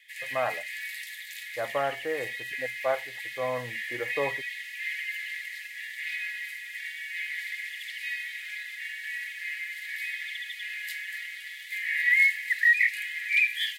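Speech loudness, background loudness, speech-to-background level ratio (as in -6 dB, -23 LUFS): -33.5 LUFS, -29.5 LUFS, -4.0 dB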